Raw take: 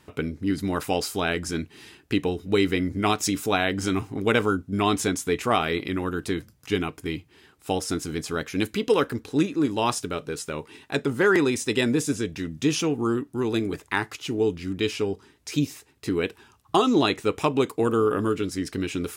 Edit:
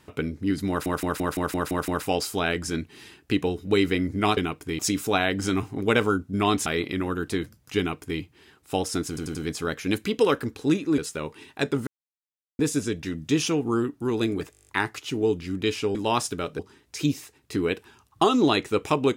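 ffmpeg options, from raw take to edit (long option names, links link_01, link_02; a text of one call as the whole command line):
ffmpeg -i in.wav -filter_complex "[0:a]asplit=27[link_01][link_02][link_03][link_04][link_05][link_06][link_07][link_08][link_09][link_10][link_11][link_12][link_13][link_14][link_15][link_16][link_17][link_18][link_19][link_20][link_21][link_22][link_23][link_24][link_25][link_26][link_27];[link_01]atrim=end=0.862[link_28];[link_02]atrim=start=0.688:end=0.862[link_29];[link_03]atrim=start=0.688:end=0.862[link_30];[link_04]atrim=start=0.688:end=0.862[link_31];[link_05]atrim=start=0.688:end=0.862[link_32];[link_06]atrim=start=0.688:end=0.862[link_33];[link_07]atrim=start=0.688:end=0.862[link_34];[link_08]atrim=start=0.688:end=3.182[link_35];[link_09]atrim=start=6.738:end=7.162[link_36];[link_10]atrim=start=3.178:end=5.052[link_37];[link_11]atrim=start=5.618:end=8.132[link_38];[link_12]atrim=start=8.038:end=8.132[link_39];[link_13]atrim=start=8.038:end=8.132[link_40];[link_14]atrim=start=8.038:end=9.672[link_41];[link_15]atrim=start=10.308:end=11.2,asetpts=PTS-STARTPTS,afade=type=out:start_time=0.888:duration=0.004:curve=hsin[link_42];[link_16]atrim=start=11.2:end=11.92,asetpts=PTS-STARTPTS,volume=0[link_43];[link_17]atrim=start=11.92:end=13.862,asetpts=PTS-STARTPTS,afade=type=in:duration=0.004:curve=hsin[link_44];[link_18]atrim=start=13.838:end=13.862[link_45];[link_19]atrim=start=13.838:end=13.862[link_46];[link_20]atrim=start=13.838:end=13.862[link_47];[link_21]atrim=start=13.838:end=13.862[link_48];[link_22]atrim=start=13.838:end=13.862[link_49];[link_23]atrim=start=13.838:end=13.862[link_50];[link_24]atrim=start=13.838:end=13.862[link_51];[link_25]atrim=start=13.838:end=15.122[link_52];[link_26]atrim=start=9.668:end=10.312[link_53];[link_27]atrim=start=15.118[link_54];[link_28][link_29]acrossfade=duration=0.004:curve1=hsin:curve2=hsin[link_55];[link_55][link_30]acrossfade=duration=0.004:curve1=hsin:curve2=hsin[link_56];[link_56][link_31]acrossfade=duration=0.004:curve1=hsin:curve2=hsin[link_57];[link_57][link_32]acrossfade=duration=0.004:curve1=hsin:curve2=hsin[link_58];[link_58][link_33]acrossfade=duration=0.004:curve1=hsin:curve2=hsin[link_59];[link_59][link_34]acrossfade=duration=0.004:curve1=hsin:curve2=hsin[link_60];[link_60][link_35]acrossfade=duration=0.004:curve1=hsin:curve2=hsin[link_61];[link_61][link_36]acrossfade=duration=0.004:curve1=hsin:curve2=hsin[link_62];[link_62][link_37]acrossfade=duration=0.004:curve1=hsin:curve2=hsin[link_63];[link_63][link_38]acrossfade=duration=0.004:curve1=hsin:curve2=hsin[link_64];[link_64][link_39]acrossfade=duration=0.004:curve1=hsin:curve2=hsin[link_65];[link_65][link_40]acrossfade=duration=0.004:curve1=hsin:curve2=hsin[link_66];[link_66][link_41]acrossfade=duration=0.004:curve1=hsin:curve2=hsin[link_67];[link_42][link_43][link_44]concat=n=3:v=0:a=1[link_68];[link_67][link_68]acrossfade=duration=0.004:curve1=hsin:curve2=hsin[link_69];[link_69][link_45]acrossfade=duration=0.004:curve1=hsin:curve2=hsin[link_70];[link_70][link_46]acrossfade=duration=0.004:curve1=hsin:curve2=hsin[link_71];[link_71][link_47]acrossfade=duration=0.004:curve1=hsin:curve2=hsin[link_72];[link_72][link_48]acrossfade=duration=0.004:curve1=hsin:curve2=hsin[link_73];[link_73][link_49]acrossfade=duration=0.004:curve1=hsin:curve2=hsin[link_74];[link_74][link_50]acrossfade=duration=0.004:curve1=hsin:curve2=hsin[link_75];[link_75][link_51]acrossfade=duration=0.004:curve1=hsin:curve2=hsin[link_76];[link_76][link_52]acrossfade=duration=0.004:curve1=hsin:curve2=hsin[link_77];[link_77][link_53]acrossfade=duration=0.004:curve1=hsin:curve2=hsin[link_78];[link_78][link_54]acrossfade=duration=0.004:curve1=hsin:curve2=hsin" out.wav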